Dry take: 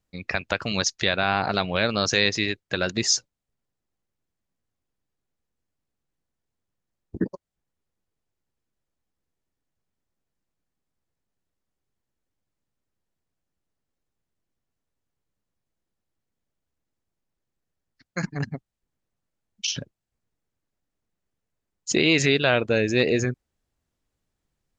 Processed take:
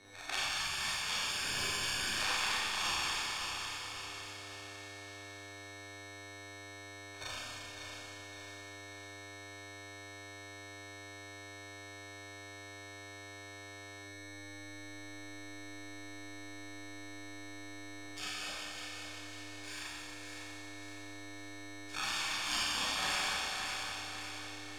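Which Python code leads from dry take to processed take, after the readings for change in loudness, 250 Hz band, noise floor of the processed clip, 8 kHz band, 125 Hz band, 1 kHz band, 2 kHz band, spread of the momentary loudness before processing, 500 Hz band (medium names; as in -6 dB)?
-15.5 dB, -19.0 dB, -49 dBFS, -8.0 dB, -18.0 dB, -8.0 dB, -9.0 dB, 13 LU, -21.0 dB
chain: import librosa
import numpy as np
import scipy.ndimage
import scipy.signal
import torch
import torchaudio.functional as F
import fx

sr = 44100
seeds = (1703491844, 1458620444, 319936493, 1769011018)

p1 = fx.filter_lfo_bandpass(x, sr, shape='sine', hz=0.49, low_hz=770.0, high_hz=2100.0, q=1.5)
p2 = fx.high_shelf(p1, sr, hz=2600.0, db=4.0)
p3 = fx.hpss(p2, sr, part='harmonic', gain_db=-18)
p4 = fx.transient(p3, sr, attack_db=-6, sustain_db=8)
p5 = fx.rider(p4, sr, range_db=5, speed_s=0.5)
p6 = p4 + (p5 * librosa.db_to_amplitude(-1.0))
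p7 = p6 + 10.0 ** (-53.0 / 20.0) * np.sin(2.0 * np.pi * 4200.0 * np.arange(len(p6)) / sr)
p8 = fx.sample_hold(p7, sr, seeds[0], rate_hz=2000.0, jitter_pct=0)
p9 = fx.spec_gate(p8, sr, threshold_db=-20, keep='weak')
p10 = fx.air_absorb(p9, sr, metres=77.0)
p11 = fx.echo_feedback(p10, sr, ms=553, feedback_pct=40, wet_db=-8.0)
p12 = fx.rev_schroeder(p11, sr, rt60_s=2.0, comb_ms=30, drr_db=-9.5)
p13 = fx.band_squash(p12, sr, depth_pct=40)
y = p13 * librosa.db_to_amplitude(1.0)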